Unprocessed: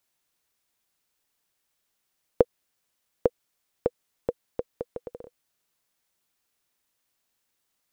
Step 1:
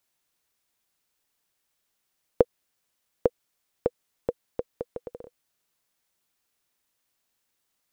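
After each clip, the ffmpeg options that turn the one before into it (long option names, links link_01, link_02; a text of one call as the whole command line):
ffmpeg -i in.wav -af anull out.wav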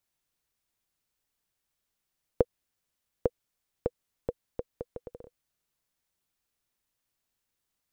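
ffmpeg -i in.wav -af "lowshelf=frequency=150:gain=10,volume=-6dB" out.wav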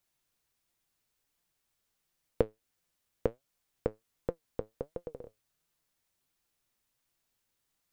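ffmpeg -i in.wav -filter_complex "[0:a]asplit=2[link_01][link_02];[link_02]acompressor=threshold=-33dB:ratio=6,volume=1dB[link_03];[link_01][link_03]amix=inputs=2:normalize=0,flanger=delay=5.7:depth=3.6:regen=70:speed=1.4:shape=sinusoidal" out.wav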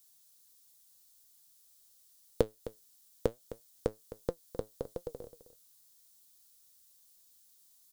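ffmpeg -i in.wav -af "aexciter=amount=3.7:drive=7.9:freq=3500,aecho=1:1:260:0.178" out.wav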